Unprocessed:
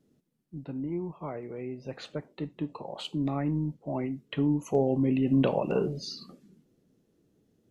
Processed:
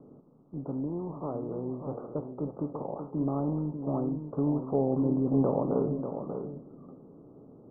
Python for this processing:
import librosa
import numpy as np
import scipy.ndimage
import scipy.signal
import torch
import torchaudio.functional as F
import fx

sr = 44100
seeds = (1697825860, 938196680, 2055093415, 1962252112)

p1 = fx.bin_compress(x, sr, power=0.6)
p2 = scipy.signal.sosfilt(scipy.signal.butter(16, 1300.0, 'lowpass', fs=sr, output='sos'), p1)
p3 = p2 + fx.echo_single(p2, sr, ms=591, db=-8.0, dry=0)
y = p3 * 10.0 ** (-4.0 / 20.0)